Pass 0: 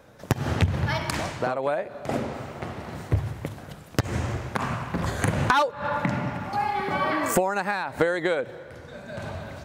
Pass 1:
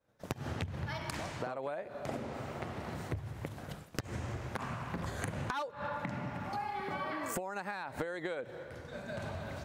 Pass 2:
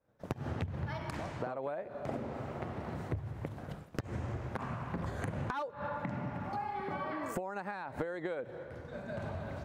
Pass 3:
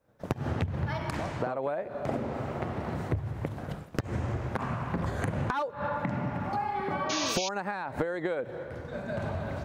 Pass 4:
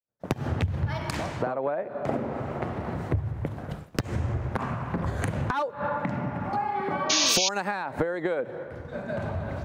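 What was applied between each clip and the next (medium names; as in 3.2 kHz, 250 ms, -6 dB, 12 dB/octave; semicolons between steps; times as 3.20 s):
expander -39 dBFS; compression 4:1, threshold -35 dBFS, peak gain reduction 16.5 dB; trim -2 dB
treble shelf 2.3 kHz -11.5 dB; trim +1.5 dB
painted sound noise, 7.09–7.49 s, 2.2–6.8 kHz -40 dBFS; trim +6.5 dB
compression 2:1, threshold -34 dBFS, peak gain reduction 6 dB; three bands expanded up and down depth 100%; trim +6.5 dB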